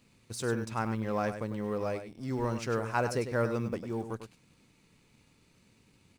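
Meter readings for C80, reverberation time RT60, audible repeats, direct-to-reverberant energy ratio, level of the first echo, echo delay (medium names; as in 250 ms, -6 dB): no reverb, no reverb, 1, no reverb, -9.5 dB, 100 ms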